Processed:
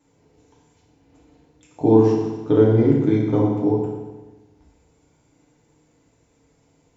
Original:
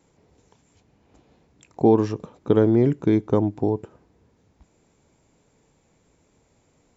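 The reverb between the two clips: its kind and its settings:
feedback delay network reverb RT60 1.2 s, low-frequency decay 1.05×, high-frequency decay 0.95×, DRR −5.5 dB
level −5.5 dB

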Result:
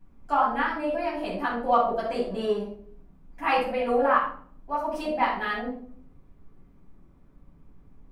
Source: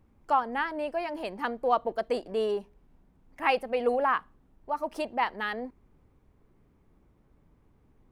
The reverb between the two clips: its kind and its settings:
rectangular room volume 620 cubic metres, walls furnished, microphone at 8.4 metres
level −7.5 dB

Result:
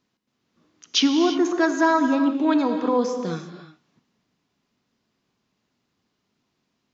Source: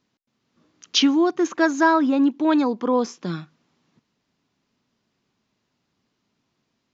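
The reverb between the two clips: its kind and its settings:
reverb whose tail is shaped and stops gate 370 ms flat, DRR 6 dB
level −1.5 dB

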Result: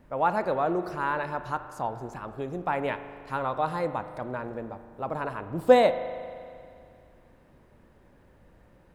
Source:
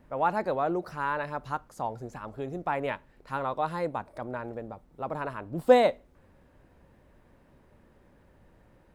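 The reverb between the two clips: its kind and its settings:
spring reverb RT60 2.3 s, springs 39 ms, chirp 70 ms, DRR 10.5 dB
level +1.5 dB

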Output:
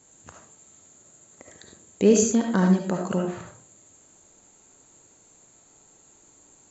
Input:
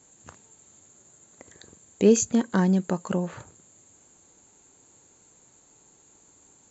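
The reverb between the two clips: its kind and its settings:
comb and all-pass reverb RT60 0.4 s, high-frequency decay 0.55×, pre-delay 30 ms, DRR 2 dB

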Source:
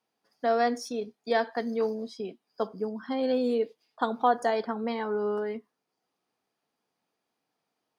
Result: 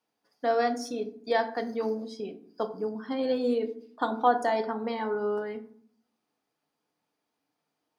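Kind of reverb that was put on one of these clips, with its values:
feedback delay network reverb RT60 0.56 s, low-frequency decay 1.55×, high-frequency decay 0.5×, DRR 7 dB
level −1 dB

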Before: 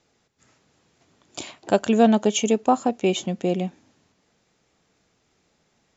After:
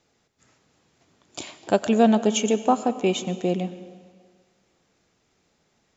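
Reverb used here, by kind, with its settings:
comb and all-pass reverb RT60 1.8 s, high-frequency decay 0.85×, pre-delay 60 ms, DRR 13.5 dB
level −1 dB

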